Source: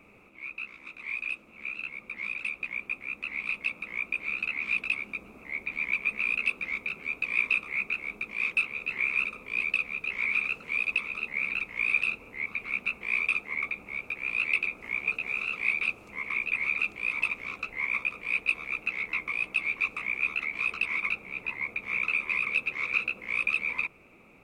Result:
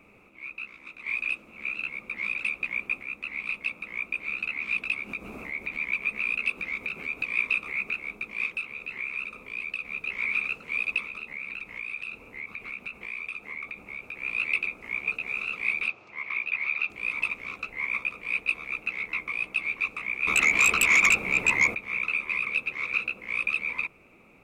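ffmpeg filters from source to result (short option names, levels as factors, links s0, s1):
-filter_complex "[0:a]asettb=1/sr,asplit=3[s0][s1][s2];[s0]atrim=end=4.764[s3];[s1]atrim=start=4.76:end=7.91,asetpts=PTS-STARTPTS,afade=t=in:d=0.004:c=qsin,afade=t=out:st=3.146:d=0.004:c=qsin,acompressor=mode=upward:threshold=0.0355:ratio=2.5:attack=3.2:release=140:knee=2.83:detection=peak[s4];[s2]atrim=start=7.906[s5];[s3][s4]acrossfade=d=0.004:c1=hsin:c2=qsin[s6];[s6][s5]acrossfade=d=0.004:c1=qsin:c2=hsin,asettb=1/sr,asplit=3[s7][s8][s9];[s7]atrim=end=8.464[s10];[s8]atrim=start=8.46:end=9.85,asetpts=PTS-STARTPTS,afade=t=in:d=0.004:c=qsin,afade=t=out:st=1.386:d=0.004:c=qsin,acompressor=threshold=0.0126:ratio=1.5:attack=3.2:release=140:knee=1:detection=peak[s11];[s9]atrim=start=9.846[s12];[s10][s11]acrossfade=d=0.004:c1=hsin:c2=qsin[s13];[s13][s12]acrossfade=d=0.004:c1=qsin:c2=hsin,asettb=1/sr,asplit=3[s14][s15][s16];[s14]atrim=end=11.044[s17];[s15]atrim=start=11.04:end=14.14,asetpts=PTS-STARTPTS,afade=t=in:d=0.004:c=qsin,afade=t=out:st=3.096:d=0.004:c=qsin,acompressor=threshold=0.02:ratio=3:attack=3.2:release=140:knee=1:detection=peak[s18];[s16]atrim=start=14.136[s19];[s17][s18]acrossfade=d=0.004:c1=hsin:c2=qsin[s20];[s20][s19]acrossfade=d=0.004:c1=qsin:c2=hsin,asettb=1/sr,asplit=3[s21][s22][s23];[s21]atrim=end=15.884[s24];[s22]atrim=start=15.88:end=16.9,asetpts=PTS-STARTPTS,afade=t=in:d=0.004:c=qsin,afade=t=out:st=1.016:d=0.004:c=qsin,highpass=150,equalizer=f=200:t=q:w=4:g=-9,equalizer=f=280:t=q:w=4:g=-8,equalizer=f=470:t=q:w=4:g=-6,lowpass=f=5500:w=0.5412,lowpass=f=5500:w=1.3066[s25];[s23]atrim=start=16.896[s26];[s24][s25]acrossfade=d=0.004:c1=hsin:c2=qsin[s27];[s27][s26]acrossfade=d=0.004:c1=qsin:c2=hsin,asettb=1/sr,asplit=3[s28][s29][s30];[s28]atrim=end=20.274[s31];[s29]atrim=start=20.27:end=21.75,asetpts=PTS-STARTPTS,afade=t=in:d=0.004:c=qsin,afade=t=out:st=1.476:d=0.004:c=qsin,aeval=exprs='0.188*sin(PI/2*3.16*val(0)/0.188)':c=same[s32];[s30]atrim=start=21.746[s33];[s31][s32]acrossfade=d=0.004:c1=hsin:c2=qsin[s34];[s34][s33]acrossfade=d=0.004:c1=qsin:c2=hsin,asplit=3[s35][s36][s37];[s35]atrim=end=1.062[s38];[s36]atrim=start=1.058:end=3.032,asetpts=PTS-STARTPTS,volume=1.58[s39];[s37]atrim=start=3.028[s40];[s38][s39]acrossfade=d=0.004:c1=hsin:c2=hsin[s41];[s41][s40]acrossfade=d=0.004:c1=hsin:c2=hsin"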